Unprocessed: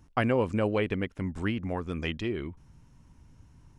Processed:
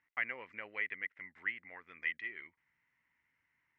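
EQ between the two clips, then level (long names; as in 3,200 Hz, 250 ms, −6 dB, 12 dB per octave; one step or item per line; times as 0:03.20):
resonant band-pass 2,000 Hz, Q 11
high-frequency loss of the air 90 metres
+8.0 dB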